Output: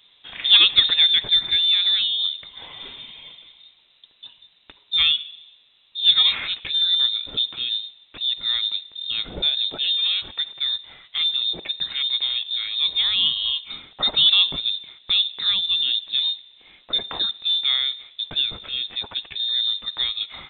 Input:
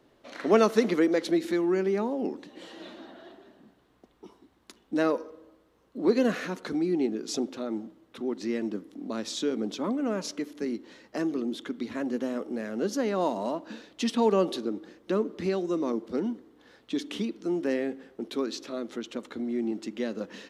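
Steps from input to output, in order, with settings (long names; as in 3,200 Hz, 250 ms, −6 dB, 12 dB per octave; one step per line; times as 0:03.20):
voice inversion scrambler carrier 3,900 Hz
level +6.5 dB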